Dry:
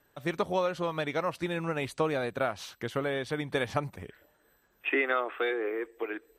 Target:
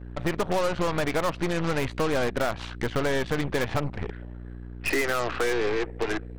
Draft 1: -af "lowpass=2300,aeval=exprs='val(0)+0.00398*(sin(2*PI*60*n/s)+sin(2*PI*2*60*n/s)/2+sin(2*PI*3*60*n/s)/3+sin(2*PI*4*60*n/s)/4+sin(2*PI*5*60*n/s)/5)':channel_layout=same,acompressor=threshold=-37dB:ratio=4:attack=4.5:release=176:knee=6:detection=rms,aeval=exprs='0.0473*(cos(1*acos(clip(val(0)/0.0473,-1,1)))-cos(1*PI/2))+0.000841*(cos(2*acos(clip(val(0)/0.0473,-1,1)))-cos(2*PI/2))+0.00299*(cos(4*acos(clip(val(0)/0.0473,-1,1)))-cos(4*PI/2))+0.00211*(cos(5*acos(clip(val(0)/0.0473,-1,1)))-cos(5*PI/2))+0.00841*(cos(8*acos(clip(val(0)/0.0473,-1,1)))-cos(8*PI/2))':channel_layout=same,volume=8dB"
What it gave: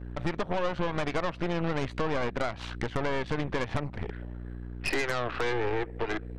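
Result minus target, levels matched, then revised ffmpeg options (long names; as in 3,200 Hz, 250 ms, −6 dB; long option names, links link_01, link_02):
downward compressor: peak gain reduction +6 dB
-af "lowpass=2300,aeval=exprs='val(0)+0.00398*(sin(2*PI*60*n/s)+sin(2*PI*2*60*n/s)/2+sin(2*PI*3*60*n/s)/3+sin(2*PI*4*60*n/s)/4+sin(2*PI*5*60*n/s)/5)':channel_layout=same,acompressor=threshold=-29dB:ratio=4:attack=4.5:release=176:knee=6:detection=rms,aeval=exprs='0.0473*(cos(1*acos(clip(val(0)/0.0473,-1,1)))-cos(1*PI/2))+0.000841*(cos(2*acos(clip(val(0)/0.0473,-1,1)))-cos(2*PI/2))+0.00299*(cos(4*acos(clip(val(0)/0.0473,-1,1)))-cos(4*PI/2))+0.00211*(cos(5*acos(clip(val(0)/0.0473,-1,1)))-cos(5*PI/2))+0.00841*(cos(8*acos(clip(val(0)/0.0473,-1,1)))-cos(8*PI/2))':channel_layout=same,volume=8dB"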